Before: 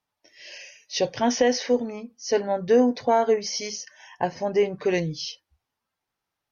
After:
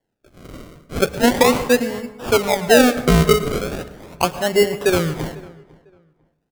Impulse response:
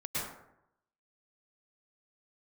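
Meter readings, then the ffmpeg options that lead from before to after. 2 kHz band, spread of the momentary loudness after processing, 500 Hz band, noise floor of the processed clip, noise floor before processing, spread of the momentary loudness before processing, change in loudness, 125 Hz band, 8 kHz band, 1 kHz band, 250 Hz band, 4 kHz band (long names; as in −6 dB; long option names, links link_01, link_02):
+12.0 dB, 16 LU, +5.5 dB, −73 dBFS, −84 dBFS, 15 LU, +7.0 dB, +14.0 dB, can't be measured, +5.5 dB, +7.0 dB, +7.5 dB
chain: -filter_complex "[0:a]acrusher=samples=35:mix=1:aa=0.000001:lfo=1:lforange=35:lforate=0.38,asplit=2[link_01][link_02];[link_02]adelay=499,lowpass=frequency=2100:poles=1,volume=-22.5dB,asplit=2[link_03][link_04];[link_04]adelay=499,lowpass=frequency=2100:poles=1,volume=0.25[link_05];[link_01][link_03][link_05]amix=inputs=3:normalize=0,asplit=2[link_06][link_07];[1:a]atrim=start_sample=2205[link_08];[link_07][link_08]afir=irnorm=-1:irlink=0,volume=-17dB[link_09];[link_06][link_09]amix=inputs=2:normalize=0,volume=5.5dB"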